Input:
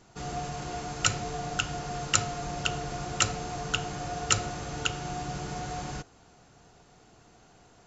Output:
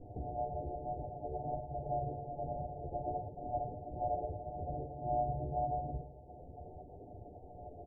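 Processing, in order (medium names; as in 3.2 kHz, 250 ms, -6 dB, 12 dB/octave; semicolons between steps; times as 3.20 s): self-modulated delay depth 0.065 ms; reverb removal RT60 0.72 s; peaking EQ 71 Hz +8.5 dB 0.52 oct; comb 2.5 ms, depth 83%; compression 6:1, threshold -45 dBFS, peak gain reduction 25 dB; flange 0.28 Hz, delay 9.8 ms, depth 4.6 ms, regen +17%; rippled Chebyshev low-pass 750 Hz, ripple 9 dB; harmony voices -4 st -16 dB, -3 st -5 dB, +3 st -16 dB; thinning echo 109 ms, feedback 79%, high-pass 360 Hz, level -9.5 dB; spring tank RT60 1.6 s, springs 44/51 ms, chirp 30 ms, DRR 11.5 dB; trim +14.5 dB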